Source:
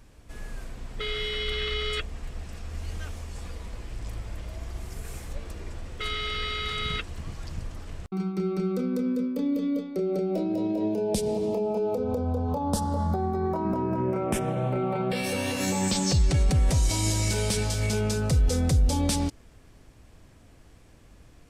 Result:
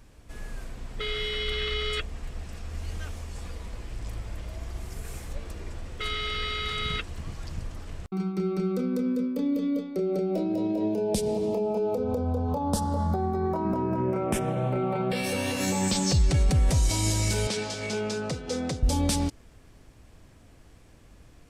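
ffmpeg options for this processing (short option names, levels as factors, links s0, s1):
-filter_complex "[0:a]asettb=1/sr,asplit=3[s0][s1][s2];[s0]atrim=end=17.474[s3];[s1]atrim=start=17.47:end=18.83,asetpts=PTS-STARTPTS,afade=t=in:d=0.004:c=qsin,afade=t=out:st=1.356:d=0.004:c=qsin,highpass=220,lowpass=5900[s4];[s2]atrim=start=18.826[s5];[s3][s4]acrossfade=d=0.004:c1=hsin:c2=qsin[s6];[s6][s5]acrossfade=d=0.004:c1=qsin:c2=hsin"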